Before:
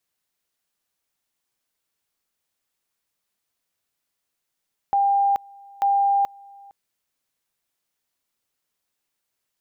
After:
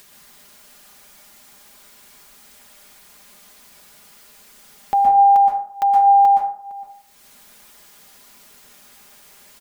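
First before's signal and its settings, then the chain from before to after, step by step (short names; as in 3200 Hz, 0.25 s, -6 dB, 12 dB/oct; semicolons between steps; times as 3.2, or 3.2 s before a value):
two-level tone 798 Hz -16 dBFS, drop 26.5 dB, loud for 0.43 s, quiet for 0.46 s, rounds 2
comb 4.9 ms, depth 65%; upward compressor, threshold -27 dBFS; plate-style reverb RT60 0.55 s, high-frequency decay 0.45×, pre-delay 0.11 s, DRR -0.5 dB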